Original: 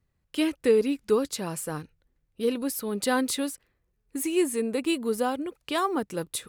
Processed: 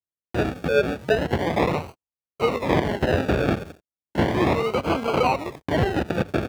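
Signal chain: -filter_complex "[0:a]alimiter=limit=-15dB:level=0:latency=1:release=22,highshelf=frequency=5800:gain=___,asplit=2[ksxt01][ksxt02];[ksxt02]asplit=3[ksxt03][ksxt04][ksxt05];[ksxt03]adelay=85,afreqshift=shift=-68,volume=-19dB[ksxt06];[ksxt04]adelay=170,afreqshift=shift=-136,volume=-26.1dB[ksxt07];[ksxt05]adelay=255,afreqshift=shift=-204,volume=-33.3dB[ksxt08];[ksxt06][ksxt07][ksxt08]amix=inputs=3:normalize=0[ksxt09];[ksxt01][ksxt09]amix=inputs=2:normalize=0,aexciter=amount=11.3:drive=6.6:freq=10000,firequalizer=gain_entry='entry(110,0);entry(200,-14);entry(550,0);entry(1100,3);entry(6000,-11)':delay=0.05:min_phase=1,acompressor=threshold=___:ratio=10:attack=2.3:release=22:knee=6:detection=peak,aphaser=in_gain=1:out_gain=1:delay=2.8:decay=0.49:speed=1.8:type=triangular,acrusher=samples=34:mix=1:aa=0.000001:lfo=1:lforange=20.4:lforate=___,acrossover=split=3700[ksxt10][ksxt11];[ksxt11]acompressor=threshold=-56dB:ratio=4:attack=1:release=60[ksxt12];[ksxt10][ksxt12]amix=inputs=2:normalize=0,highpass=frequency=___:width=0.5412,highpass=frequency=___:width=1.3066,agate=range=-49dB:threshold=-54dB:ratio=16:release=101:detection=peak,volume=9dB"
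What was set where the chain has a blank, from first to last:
12, -27dB, 0.35, 60, 60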